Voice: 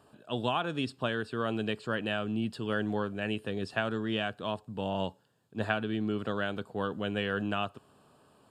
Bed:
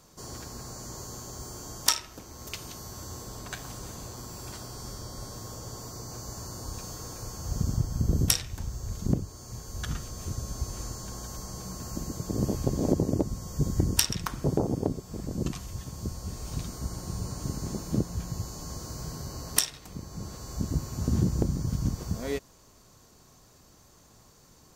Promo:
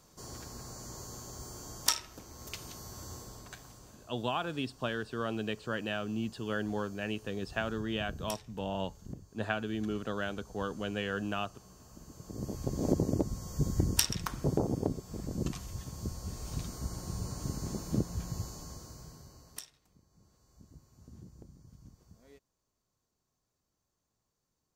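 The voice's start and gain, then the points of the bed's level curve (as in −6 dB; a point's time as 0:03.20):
3.80 s, −3.0 dB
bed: 0:03.13 −4.5 dB
0:04.08 −18 dB
0:11.96 −18 dB
0:12.92 −3.5 dB
0:18.43 −3.5 dB
0:20.03 −26.5 dB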